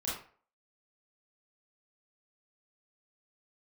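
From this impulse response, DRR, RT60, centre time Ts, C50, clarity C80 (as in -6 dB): -7.5 dB, 0.45 s, 49 ms, 2.0 dB, 7.5 dB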